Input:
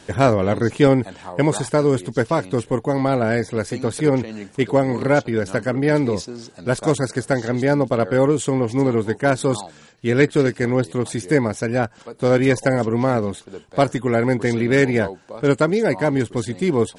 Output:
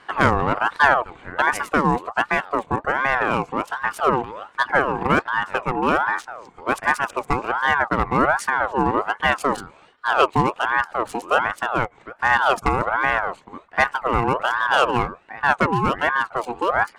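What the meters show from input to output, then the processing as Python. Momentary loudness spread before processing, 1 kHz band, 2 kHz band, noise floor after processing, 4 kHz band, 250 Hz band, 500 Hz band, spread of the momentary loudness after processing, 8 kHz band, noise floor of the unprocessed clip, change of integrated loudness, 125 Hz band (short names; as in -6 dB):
8 LU, +7.5 dB, +6.5 dB, -52 dBFS, +2.5 dB, -8.0 dB, -6.5 dB, 8 LU, -7.0 dB, -48 dBFS, -1.0 dB, -9.0 dB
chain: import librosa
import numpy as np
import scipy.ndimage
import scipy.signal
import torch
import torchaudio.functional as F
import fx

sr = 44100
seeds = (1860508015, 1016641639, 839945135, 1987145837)

y = fx.wiener(x, sr, points=9)
y = fx.ring_lfo(y, sr, carrier_hz=970.0, swing_pct=40, hz=1.3)
y = F.gain(torch.from_numpy(y), 1.0).numpy()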